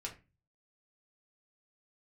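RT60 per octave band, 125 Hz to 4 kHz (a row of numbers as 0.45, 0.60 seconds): 0.65, 0.40, 0.30, 0.25, 0.30, 0.20 seconds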